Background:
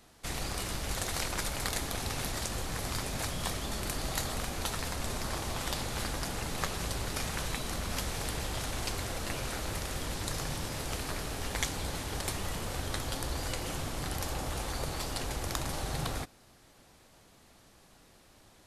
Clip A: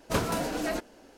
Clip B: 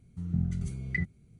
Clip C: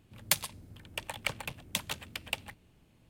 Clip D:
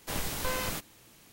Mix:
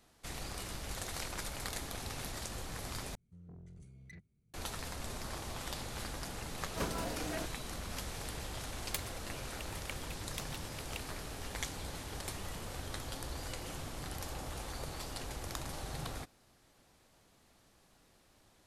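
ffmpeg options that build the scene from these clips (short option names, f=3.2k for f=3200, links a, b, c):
-filter_complex "[0:a]volume=-7dB[a];[2:a]asoftclip=type=tanh:threshold=-32dB[b];[a]asplit=2[c][d];[c]atrim=end=3.154[e];[b]atrim=end=1.39,asetpts=PTS-STARTPTS,volume=-16.5dB[f];[d]atrim=start=4.536[g];[1:a]atrim=end=1.17,asetpts=PTS-STARTPTS,volume=-10dB,afade=t=in:d=0.004:c=hsin,afade=t=out:st=1.166:d=0.004:c=hsin,adelay=293706S[h];[3:a]atrim=end=3.09,asetpts=PTS-STARTPTS,volume=-12dB,afade=t=in:d=0.004:c=hsin,afade=t=out:st=3.086:d=0.004:c=hsin,adelay=8630[i];[e][f]acrossfade=d=0.004:c1=hsin:c2=hsin[j];[j][g]acrossfade=d=0.004:c1=hsin:c2=hsin[k];[k][h][i]amix=inputs=3:normalize=0"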